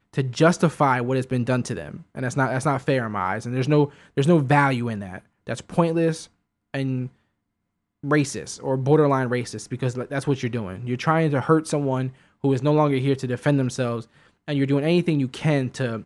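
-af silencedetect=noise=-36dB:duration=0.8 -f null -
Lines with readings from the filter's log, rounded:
silence_start: 7.07
silence_end: 8.04 | silence_duration: 0.96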